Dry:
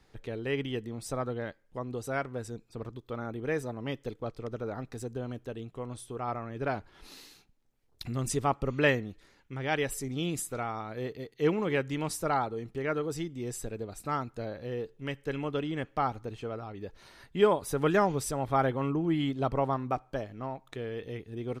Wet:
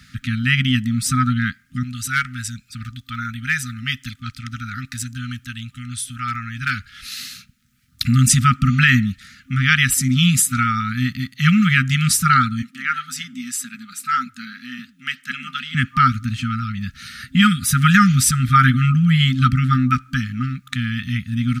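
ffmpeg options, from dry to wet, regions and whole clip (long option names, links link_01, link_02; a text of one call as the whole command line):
ffmpeg -i in.wav -filter_complex "[0:a]asettb=1/sr,asplit=3[link_01][link_02][link_03];[link_01]atrim=end=1.834[link_04];[link_02]atrim=start=1.83:end=7.19,asetpts=PTS-STARTPTS,afade=type=in:duration=0.004:curve=qsin,afade=type=out:start_time=5.356:duration=0.004:curve=qsin,equalizer=frequency=200:width=0.63:gain=-12.5,asoftclip=type=hard:threshold=-25dB,asuperstop=centerf=770:order=4:qfactor=0.83[link_05];[link_03]atrim=start=7.186[link_06];[link_04][link_05]acrossfade=duration=0.004:curve1=hsin:curve2=qsin[link_07];[link_07][link_06]acrossfade=duration=0.004:curve1=qsin:curve2=hsin,asettb=1/sr,asplit=3[link_08][link_09][link_10];[link_08]atrim=end=12.624[link_11];[link_09]atrim=start=12.62:end=15.75,asetpts=PTS-STARTPTS,afade=type=in:duration=0.004:curve=qsin,afade=type=out:start_time=3.126:duration=0.004:curve=qsin,highpass=frequency=270:width=0.5412,highpass=frequency=270:width=1.3066,flanger=delay=0.4:depth=8.8:regen=-88:speed=1.9:shape=triangular[link_12];[link_10]atrim=start=15.746[link_13];[link_11][link_12]acrossfade=duration=0.004:curve1=hsin:curve2=qsin[link_14];[link_14][link_13]acrossfade=duration=0.004:curve1=qsin:curve2=hsin,highpass=75,afftfilt=real='re*(1-between(b*sr/4096,260,1200))':imag='im*(1-between(b*sr/4096,260,1200))':win_size=4096:overlap=0.75,alimiter=level_in=21dB:limit=-1dB:release=50:level=0:latency=1,volume=-1dB" out.wav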